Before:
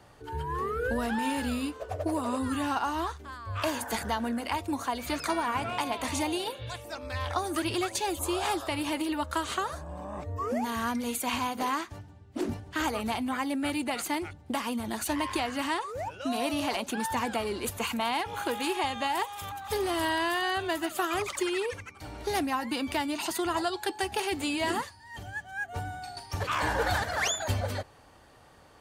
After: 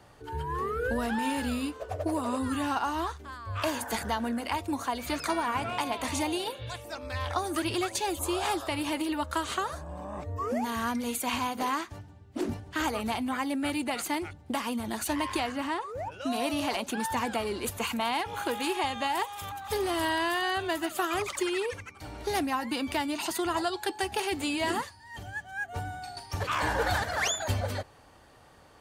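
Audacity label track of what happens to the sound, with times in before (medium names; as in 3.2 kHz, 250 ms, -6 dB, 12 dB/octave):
15.520000	16.120000	treble shelf 2.3 kHz -8.5 dB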